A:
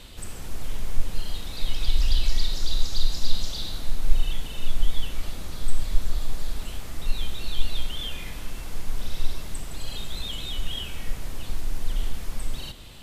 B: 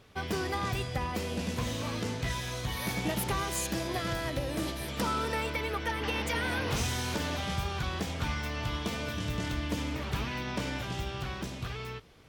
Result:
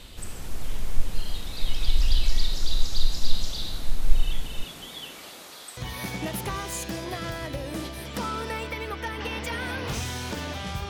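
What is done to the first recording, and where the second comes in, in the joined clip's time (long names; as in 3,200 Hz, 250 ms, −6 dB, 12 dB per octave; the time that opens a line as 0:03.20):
A
0:04.62–0:05.77: high-pass filter 150 Hz → 630 Hz
0:05.77: continue with B from 0:02.60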